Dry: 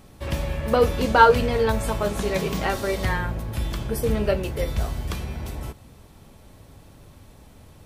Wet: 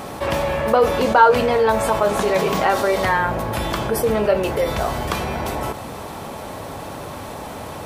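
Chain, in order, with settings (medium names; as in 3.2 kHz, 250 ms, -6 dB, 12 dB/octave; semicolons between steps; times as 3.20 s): high-pass 190 Hz 6 dB/octave; peaking EQ 850 Hz +9.5 dB 2.1 oct; level flattener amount 50%; trim -7.5 dB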